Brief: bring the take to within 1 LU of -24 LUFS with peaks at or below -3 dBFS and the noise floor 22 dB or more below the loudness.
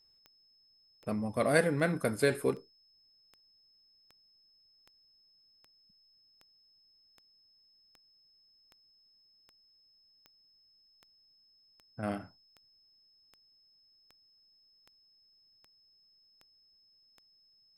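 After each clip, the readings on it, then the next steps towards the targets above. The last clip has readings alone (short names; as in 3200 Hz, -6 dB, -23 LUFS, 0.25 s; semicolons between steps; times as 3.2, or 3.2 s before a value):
clicks 23; steady tone 5200 Hz; tone level -64 dBFS; loudness -31.5 LUFS; peak -12.0 dBFS; loudness target -24.0 LUFS
-> de-click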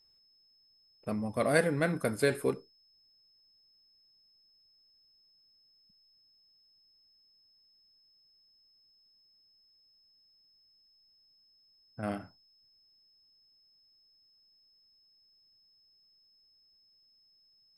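clicks 0; steady tone 5200 Hz; tone level -64 dBFS
-> notch 5200 Hz, Q 30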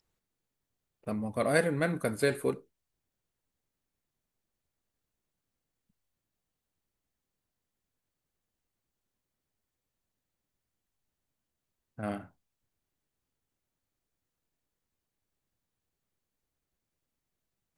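steady tone none; loudness -31.0 LUFS; peak -12.0 dBFS; loudness target -24.0 LUFS
-> gain +7 dB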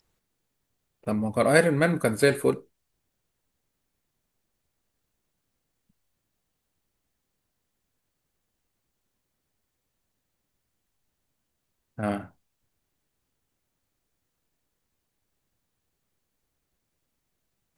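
loudness -24.0 LUFS; peak -5.0 dBFS; noise floor -80 dBFS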